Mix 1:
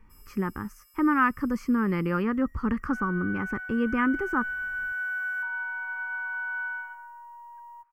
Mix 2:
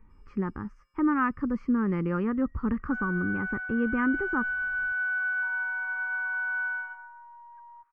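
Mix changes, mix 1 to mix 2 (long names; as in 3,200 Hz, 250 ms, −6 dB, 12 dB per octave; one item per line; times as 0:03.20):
second sound +7.5 dB
master: add head-to-tape spacing loss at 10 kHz 35 dB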